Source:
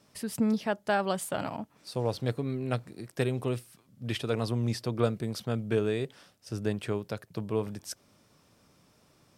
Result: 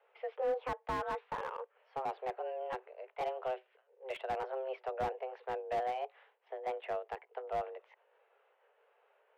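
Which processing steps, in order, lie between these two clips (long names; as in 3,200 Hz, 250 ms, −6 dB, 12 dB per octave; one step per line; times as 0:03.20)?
pitch shifter gated in a rhythm +2 semitones, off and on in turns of 341 ms
single-sideband voice off tune +260 Hz 180–2,600 Hz
slew-rate limiting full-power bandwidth 36 Hz
level −4.5 dB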